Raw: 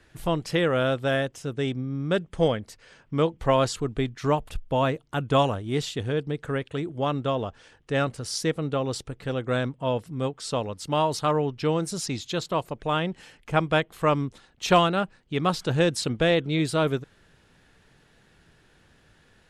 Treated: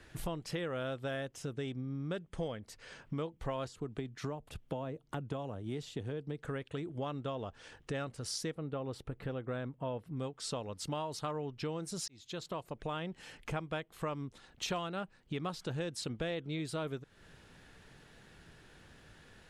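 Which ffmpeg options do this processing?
-filter_complex "[0:a]asettb=1/sr,asplit=3[s0][s1][s2];[s0]atrim=end=3.674[s3];[s1]atrim=start=3.67:end=6.45,asetpts=PTS-STARTPTS,afade=t=in:d=0.004:c=qsin,afade=t=out:st=2.776:d=0.004:c=qsin,acrossover=split=82|780[s4][s5][s6];[s4]acompressor=threshold=0.002:ratio=4[s7];[s5]acompressor=threshold=0.0631:ratio=4[s8];[s6]acompressor=threshold=0.00891:ratio=4[s9];[s7][s8][s9]amix=inputs=3:normalize=0[s10];[s2]atrim=start=6.446[s11];[s3][s10]acrossfade=d=0.004:c1=hsin:c2=qsin[s12];[s12][s11]acrossfade=d=0.004:c1=qsin:c2=hsin,asettb=1/sr,asplit=3[s13][s14][s15];[s13]atrim=end=8.554[s16];[s14]atrim=start=8.55:end=10.17,asetpts=PTS-STARTPTS,afade=t=in:d=0.004:c=qsin,afade=t=out:st=1.616:d=0.004:c=qsin,equalizer=f=6800:w=0.66:g=-13.5[s17];[s15]atrim=start=10.166[s18];[s16][s17]acrossfade=d=0.004:c1=hsin:c2=qsin[s19];[s19][s18]acrossfade=d=0.004:c1=qsin:c2=hsin,asplit=2[s20][s21];[s20]atrim=end=12.08,asetpts=PTS-STARTPTS,afade=t=out:st=12.076:d=0.004:c=hsin[s22];[s21]atrim=start=12.08,asetpts=PTS-STARTPTS,afade=t=in:d=1.01[s23];[s22][s23]concat=n=2:v=0:a=1,acompressor=threshold=0.0112:ratio=4,volume=1.12"

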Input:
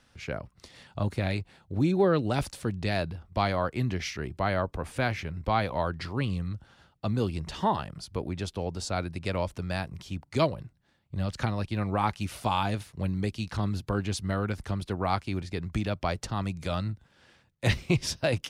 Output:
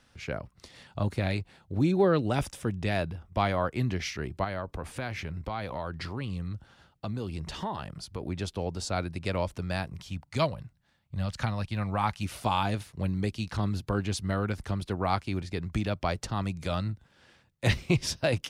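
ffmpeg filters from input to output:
-filter_complex "[0:a]asettb=1/sr,asplit=3[s0][s1][s2];[s0]atrim=end=2.294[s3];[s1]atrim=start=2.29:end=3.74,asetpts=PTS-STARTPTS,afade=t=in:d=0.004:c=qsin,afade=t=out:st=1.446:d=0.004:c=qsin,bandreject=f=4300:w=5.3[s4];[s2]atrim=start=3.736[s5];[s3][s4]acrossfade=d=0.004:c1=hsin:c2=qsin[s6];[s6][s5]acrossfade=d=0.004:c1=qsin:c2=hsin,asettb=1/sr,asplit=3[s7][s8][s9];[s7]atrim=end=4.444[s10];[s8]atrim=start=4.44:end=8.22,asetpts=PTS-STARTPTS,afade=t=in:d=0.004:c=qsin,afade=t=out:st=3.776:d=0.004:c=qsin,acompressor=threshold=0.0282:ratio=3:attack=3.2:release=140:knee=1:detection=peak[s11];[s9]atrim=start=8.216[s12];[s10][s11]acrossfade=d=0.004:c1=hsin:c2=qsin[s13];[s13][s12]acrossfade=d=0.004:c1=qsin:c2=hsin,asettb=1/sr,asplit=3[s14][s15][s16];[s14]atrim=end=10.004[s17];[s15]atrim=start=10:end=12.23,asetpts=PTS-STARTPTS,afade=t=in:d=0.004:c=qsin,afade=t=out:st=2.226:d=0.004:c=qsin,equalizer=f=360:w=1.5:g=-8.5[s18];[s16]atrim=start=12.226[s19];[s17][s18]acrossfade=d=0.004:c1=hsin:c2=qsin[s20];[s20][s19]acrossfade=d=0.004:c1=qsin:c2=hsin"

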